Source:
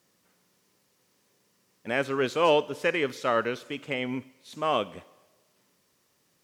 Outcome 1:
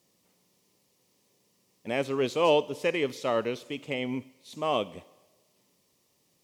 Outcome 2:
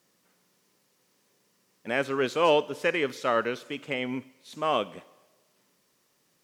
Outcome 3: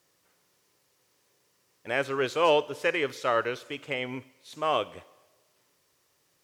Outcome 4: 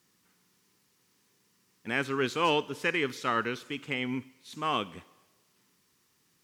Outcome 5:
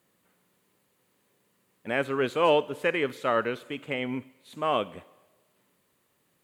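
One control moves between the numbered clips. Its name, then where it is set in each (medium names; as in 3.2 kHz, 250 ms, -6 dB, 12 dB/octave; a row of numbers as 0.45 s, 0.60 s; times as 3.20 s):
peaking EQ, frequency: 1.5 kHz, 82 Hz, 210 Hz, 590 Hz, 5.5 kHz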